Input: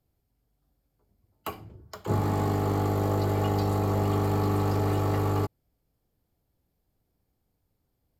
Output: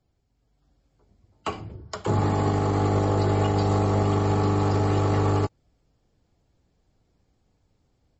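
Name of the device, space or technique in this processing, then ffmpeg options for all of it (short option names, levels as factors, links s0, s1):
low-bitrate web radio: -af "dynaudnorm=f=370:g=3:m=1.78,alimiter=limit=0.141:level=0:latency=1:release=117,volume=1.5" -ar 32000 -c:a libmp3lame -b:a 32k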